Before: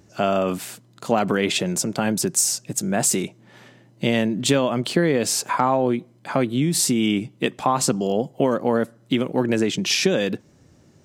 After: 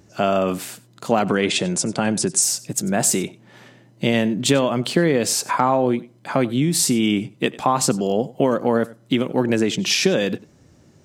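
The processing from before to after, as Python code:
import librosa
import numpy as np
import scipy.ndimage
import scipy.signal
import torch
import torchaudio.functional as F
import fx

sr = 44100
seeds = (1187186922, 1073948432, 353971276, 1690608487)

p1 = fx.brickwall_lowpass(x, sr, high_hz=11000.0, at=(1.28, 2.41), fade=0.02)
p2 = p1 + fx.echo_single(p1, sr, ms=94, db=-20.0, dry=0)
y = F.gain(torch.from_numpy(p2), 1.5).numpy()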